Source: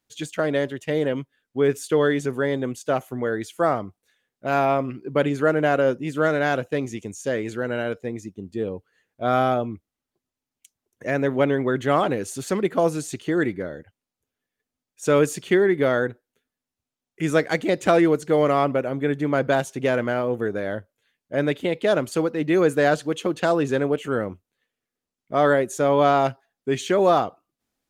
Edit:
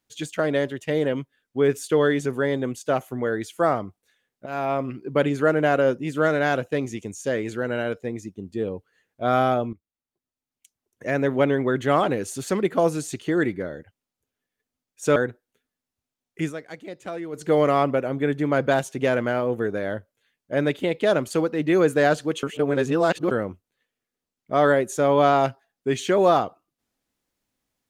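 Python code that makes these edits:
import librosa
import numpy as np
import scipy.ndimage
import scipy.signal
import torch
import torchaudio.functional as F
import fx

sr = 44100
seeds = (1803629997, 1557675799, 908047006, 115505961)

y = fx.edit(x, sr, fx.fade_in_from(start_s=4.46, length_s=0.48, floor_db=-12.5),
    fx.fade_in_from(start_s=9.73, length_s=1.47, floor_db=-15.5),
    fx.cut(start_s=15.16, length_s=0.81),
    fx.fade_down_up(start_s=17.22, length_s=1.03, db=-15.5, fade_s=0.12),
    fx.reverse_span(start_s=23.24, length_s=0.88), tone=tone)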